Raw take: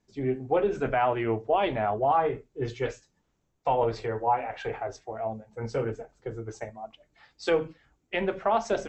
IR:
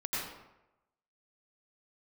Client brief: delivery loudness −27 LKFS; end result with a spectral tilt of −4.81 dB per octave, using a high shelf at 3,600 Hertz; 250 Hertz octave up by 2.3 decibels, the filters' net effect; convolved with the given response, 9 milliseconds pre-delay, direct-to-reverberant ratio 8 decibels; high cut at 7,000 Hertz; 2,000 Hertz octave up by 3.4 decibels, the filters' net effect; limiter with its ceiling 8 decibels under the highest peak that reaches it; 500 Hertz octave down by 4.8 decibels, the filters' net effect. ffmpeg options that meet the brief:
-filter_complex "[0:a]lowpass=7000,equalizer=frequency=250:width_type=o:gain=6.5,equalizer=frequency=500:width_type=o:gain=-8.5,equalizer=frequency=2000:width_type=o:gain=3,highshelf=frequency=3600:gain=6.5,alimiter=limit=-20.5dB:level=0:latency=1,asplit=2[link_01][link_02];[1:a]atrim=start_sample=2205,adelay=9[link_03];[link_02][link_03]afir=irnorm=-1:irlink=0,volume=-13.5dB[link_04];[link_01][link_04]amix=inputs=2:normalize=0,volume=5.5dB"

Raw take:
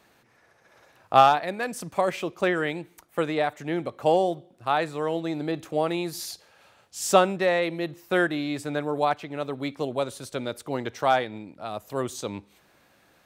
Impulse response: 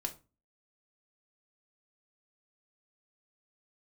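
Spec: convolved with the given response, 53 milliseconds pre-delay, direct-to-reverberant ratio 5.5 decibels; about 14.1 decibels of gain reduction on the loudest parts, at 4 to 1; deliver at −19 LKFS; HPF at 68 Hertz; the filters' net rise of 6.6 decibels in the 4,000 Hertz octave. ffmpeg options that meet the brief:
-filter_complex "[0:a]highpass=68,equalizer=frequency=4000:width_type=o:gain=8,acompressor=threshold=-28dB:ratio=4,asplit=2[link_01][link_02];[1:a]atrim=start_sample=2205,adelay=53[link_03];[link_02][link_03]afir=irnorm=-1:irlink=0,volume=-6dB[link_04];[link_01][link_04]amix=inputs=2:normalize=0,volume=13dB"

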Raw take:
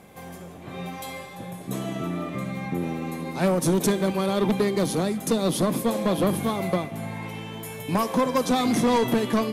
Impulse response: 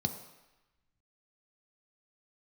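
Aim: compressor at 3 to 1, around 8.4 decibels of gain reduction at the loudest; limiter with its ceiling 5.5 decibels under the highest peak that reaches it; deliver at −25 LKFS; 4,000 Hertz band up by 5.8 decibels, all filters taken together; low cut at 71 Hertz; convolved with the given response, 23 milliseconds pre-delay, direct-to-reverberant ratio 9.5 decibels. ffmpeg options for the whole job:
-filter_complex "[0:a]highpass=71,equalizer=frequency=4000:width_type=o:gain=7,acompressor=threshold=-29dB:ratio=3,alimiter=limit=-23.5dB:level=0:latency=1,asplit=2[link_01][link_02];[1:a]atrim=start_sample=2205,adelay=23[link_03];[link_02][link_03]afir=irnorm=-1:irlink=0,volume=-13dB[link_04];[link_01][link_04]amix=inputs=2:normalize=0,volume=6dB"

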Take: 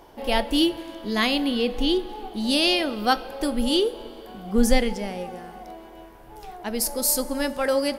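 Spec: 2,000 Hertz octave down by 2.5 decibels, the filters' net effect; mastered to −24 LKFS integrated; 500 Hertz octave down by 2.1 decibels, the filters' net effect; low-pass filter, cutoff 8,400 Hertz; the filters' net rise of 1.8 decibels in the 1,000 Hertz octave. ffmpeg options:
ffmpeg -i in.wav -af "lowpass=8400,equalizer=frequency=500:width_type=o:gain=-3.5,equalizer=frequency=1000:width_type=o:gain=5,equalizer=frequency=2000:width_type=o:gain=-4.5,volume=1dB" out.wav

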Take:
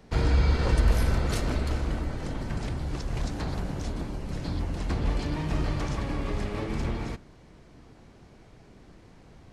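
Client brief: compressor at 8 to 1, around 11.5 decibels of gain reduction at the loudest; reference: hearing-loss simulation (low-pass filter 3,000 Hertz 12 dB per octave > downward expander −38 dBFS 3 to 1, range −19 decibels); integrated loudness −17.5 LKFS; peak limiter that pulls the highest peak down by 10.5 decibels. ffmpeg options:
ffmpeg -i in.wav -af "acompressor=threshold=-29dB:ratio=8,alimiter=level_in=7.5dB:limit=-24dB:level=0:latency=1,volume=-7.5dB,lowpass=3000,agate=range=-19dB:threshold=-38dB:ratio=3,volume=24dB" out.wav

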